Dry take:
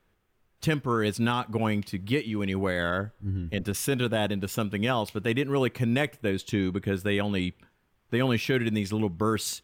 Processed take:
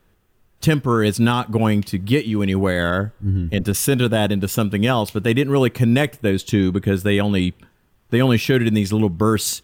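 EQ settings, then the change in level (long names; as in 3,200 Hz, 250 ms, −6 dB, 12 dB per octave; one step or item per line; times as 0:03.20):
low-shelf EQ 390 Hz +5 dB
high-shelf EQ 5,900 Hz +6 dB
notch filter 2,200 Hz, Q 16
+6.0 dB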